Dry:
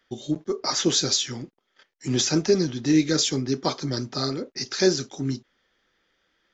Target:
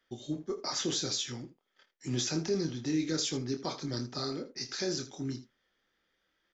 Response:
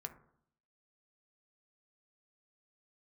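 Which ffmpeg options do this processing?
-af "alimiter=limit=-15dB:level=0:latency=1:release=43,aecho=1:1:25|80:0.422|0.188,volume=-8.5dB"

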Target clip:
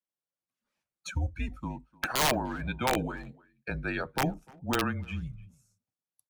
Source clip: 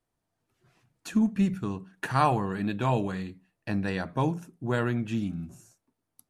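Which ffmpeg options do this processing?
ffmpeg -i in.wav -filter_complex "[0:a]highpass=frequency=260:width=0.5412,highpass=frequency=260:width=1.3066,afftdn=noise_reduction=19:noise_floor=-40,highshelf=frequency=2100:gain=6.5,aeval=exprs='(mod(7.5*val(0)+1,2)-1)/7.5':channel_layout=same,asplit=2[link_01][link_02];[link_02]adelay=300,highpass=300,lowpass=3400,asoftclip=type=hard:threshold=-26.5dB,volume=-23dB[link_03];[link_01][link_03]amix=inputs=2:normalize=0,afreqshift=-140" out.wav

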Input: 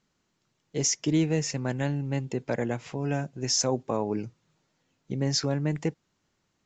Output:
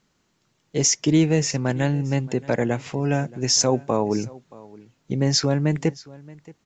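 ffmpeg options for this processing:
ffmpeg -i in.wav -af "aecho=1:1:625:0.0841,volume=6.5dB" out.wav

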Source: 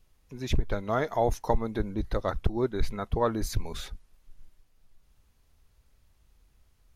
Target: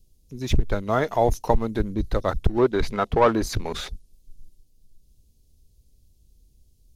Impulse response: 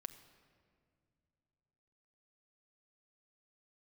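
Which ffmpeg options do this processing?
-filter_complex "[0:a]acrossover=split=500|3700[link_01][link_02][link_03];[link_02]aeval=exprs='sgn(val(0))*max(abs(val(0))-0.00266,0)':channel_layout=same[link_04];[link_01][link_04][link_03]amix=inputs=3:normalize=0,asettb=1/sr,asplit=3[link_05][link_06][link_07];[link_05]atrim=end=2.584[link_08];[link_06]atrim=start=2.58:end=3.89,asetpts=PTS-STARTPTS,afade=type=in:duration=0.004:curve=qsin,afade=type=out:start_time=1.306:duration=0.004:curve=qsin,asplit=2[link_09][link_10];[link_10]highpass=frequency=720:poles=1,volume=17dB,asoftclip=type=tanh:threshold=-12dB[link_11];[link_09][link_11]amix=inputs=2:normalize=0,lowpass=frequency=1700:poles=1,volume=-6dB[link_12];[link_07]atrim=start=3.886[link_13];[link_08][link_12]acrossfade=duration=0.004:curve1=hsin:curve2=qsin[link_14];[link_14][link_13]acrossfade=duration=0.004:curve1=qsin:curve2=hsin,volume=5.5dB"

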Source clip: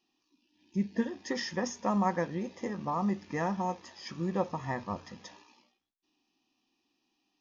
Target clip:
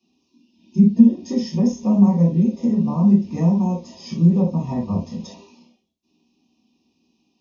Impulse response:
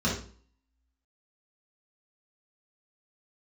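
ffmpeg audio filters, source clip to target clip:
-filter_complex "[0:a]asuperstop=centerf=1500:order=4:qfactor=1.1[link_01];[1:a]atrim=start_sample=2205,atrim=end_sample=3528[link_02];[link_01][link_02]afir=irnorm=-1:irlink=0,acrossover=split=290[link_03][link_04];[link_04]acompressor=threshold=-33dB:ratio=2[link_05];[link_03][link_05]amix=inputs=2:normalize=0,volume=-1dB"

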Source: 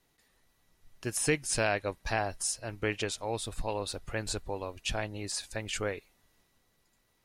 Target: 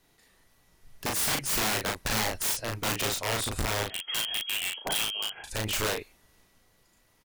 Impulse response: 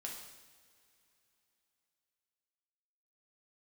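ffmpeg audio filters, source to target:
-filter_complex "[0:a]asettb=1/sr,asplit=3[link_01][link_02][link_03];[link_01]atrim=end=3.864[link_04];[link_02]atrim=start=3.86:end=5.44,asetpts=PTS-STARTPTS,afade=type=in:duration=0.004:curve=qsin,afade=type=out:start_time=1.576:duration=0.004:curve=qsin,lowpass=frequency=2800:width_type=q:width=0.5098,lowpass=frequency=2800:width_type=q:width=0.6013,lowpass=frequency=2800:width_type=q:width=0.9,lowpass=frequency=2800:width_type=q:width=2.563,afreqshift=-3300[link_05];[link_03]atrim=start=5.436[link_06];[link_04][link_05]acrossfade=duration=0.004:curve1=hsin:curve2=qsin[link_07];[link_07][link_06]acrossfade=duration=0.004:curve1=qsin:curve2=hsin,aeval=exprs='(mod(26.6*val(0)+1,2)-1)/26.6':channel_layout=same,asplit=2[link_08][link_09];[link_09]adelay=37,volume=-3dB[link_10];[link_08][link_10]amix=inputs=2:normalize=0,volume=5dB"

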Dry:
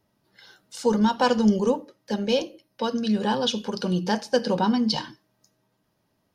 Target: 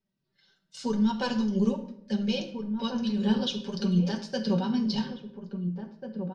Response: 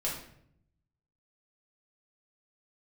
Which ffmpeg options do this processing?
-filter_complex "[0:a]lowpass=5000,agate=range=-10dB:threshold=-47dB:ratio=16:detection=peak,equalizer=frequency=840:width_type=o:width=2.5:gain=-11,aecho=1:1:5.2:0.54,alimiter=limit=-19dB:level=0:latency=1:release=110,flanger=delay=4.2:depth=3.8:regen=38:speed=1.8:shape=triangular,asplit=2[link_01][link_02];[link_02]adelay=1691,volume=-7dB,highshelf=frequency=4000:gain=-38[link_03];[link_01][link_03]amix=inputs=2:normalize=0,asplit=2[link_04][link_05];[1:a]atrim=start_sample=2205[link_06];[link_05][link_06]afir=irnorm=-1:irlink=0,volume=-8dB[link_07];[link_04][link_07]amix=inputs=2:normalize=0"

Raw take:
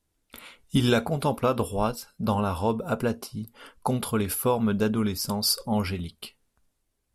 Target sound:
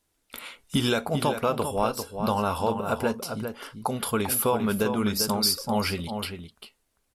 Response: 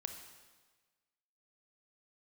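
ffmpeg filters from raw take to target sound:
-filter_complex "[0:a]lowshelf=frequency=270:gain=-9,alimiter=limit=-18dB:level=0:latency=1:release=358,asplit=2[link_01][link_02];[link_02]adelay=396.5,volume=-7dB,highshelf=frequency=4000:gain=-8.92[link_03];[link_01][link_03]amix=inputs=2:normalize=0,volume=5.5dB"

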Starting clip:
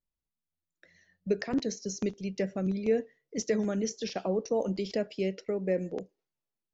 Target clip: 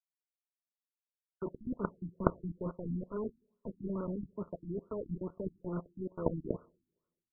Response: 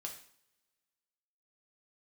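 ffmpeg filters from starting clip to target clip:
-filter_complex "[0:a]lowshelf=frequency=140:gain=11.5,bandreject=frequency=50:width_type=h:width=6,bandreject=frequency=100:width_type=h:width=6,bandreject=frequency=150:width_type=h:width=6,areverse,acompressor=threshold=-34dB:ratio=12,areverse,aecho=1:1:1132:0.224,acrusher=bits=5:mix=0:aa=0.000001,aeval=exprs='0.0668*(cos(1*acos(clip(val(0)/0.0668,-1,1)))-cos(1*PI/2))+0.0299*(cos(3*acos(clip(val(0)/0.0668,-1,1)))-cos(3*PI/2))+0.00422*(cos(7*acos(clip(val(0)/0.0668,-1,1)))-cos(7*PI/2))':channel_layout=same,asplit=2[link_01][link_02];[1:a]atrim=start_sample=2205[link_03];[link_02][link_03]afir=irnorm=-1:irlink=0,volume=-12.5dB[link_04];[link_01][link_04]amix=inputs=2:normalize=0,asetrate=40517,aresample=44100,asuperstop=centerf=780:order=4:qfactor=4.5,afftfilt=real='re*lt(b*sr/1024,330*pow(1500/330,0.5+0.5*sin(2*PI*2.3*pts/sr)))':imag='im*lt(b*sr/1024,330*pow(1500/330,0.5+0.5*sin(2*PI*2.3*pts/sr)))':win_size=1024:overlap=0.75,volume=16dB"

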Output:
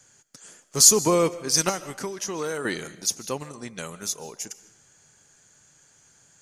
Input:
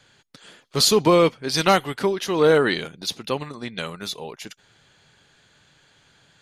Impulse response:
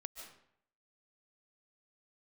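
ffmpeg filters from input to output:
-filter_complex "[0:a]asettb=1/sr,asplit=3[link_01][link_02][link_03];[link_01]atrim=end=1.694[link_04];[link_02]atrim=start=1.69:end=2.65,asetpts=PTS-STARTPTS,afade=type=in:duration=0.004:curve=qsin,afade=type=out:start_time=0.956:duration=0.004:curve=qsin,acrossover=split=1100|6500[link_05][link_06][link_07];[link_05]acompressor=threshold=-26dB:ratio=4[link_08];[link_06]acompressor=threshold=-29dB:ratio=4[link_09];[link_07]acompressor=threshold=-52dB:ratio=4[link_10];[link_08][link_09][link_10]amix=inputs=3:normalize=0[link_11];[link_03]atrim=start=2.646[link_12];[link_04][link_11]acrossfade=duration=0.004:curve1=hsin:curve2=qsin[link_13];[link_13][link_12]acrossfade=duration=0.004:curve1=qsin:curve2=hsin,highshelf=frequency=4900:width_type=q:width=3:gain=9.5,asplit=2[link_14][link_15];[1:a]atrim=start_sample=2205[link_16];[link_15][link_16]afir=irnorm=-1:irlink=0,volume=-5dB[link_17];[link_14][link_17]amix=inputs=2:normalize=0,volume=-7dB"

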